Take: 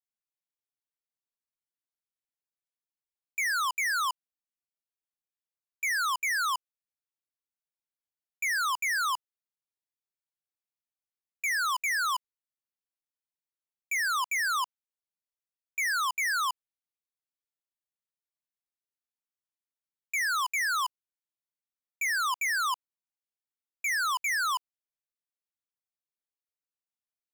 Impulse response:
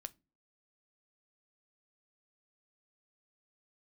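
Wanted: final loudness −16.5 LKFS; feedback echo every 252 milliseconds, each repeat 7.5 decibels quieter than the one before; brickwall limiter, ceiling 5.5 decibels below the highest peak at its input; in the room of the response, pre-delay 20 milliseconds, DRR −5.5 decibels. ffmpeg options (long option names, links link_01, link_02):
-filter_complex "[0:a]alimiter=level_in=9dB:limit=-24dB:level=0:latency=1,volume=-9dB,aecho=1:1:252|504|756|1008|1260:0.422|0.177|0.0744|0.0312|0.0131,asplit=2[link_01][link_02];[1:a]atrim=start_sample=2205,adelay=20[link_03];[link_02][link_03]afir=irnorm=-1:irlink=0,volume=10dB[link_04];[link_01][link_04]amix=inputs=2:normalize=0,volume=11dB"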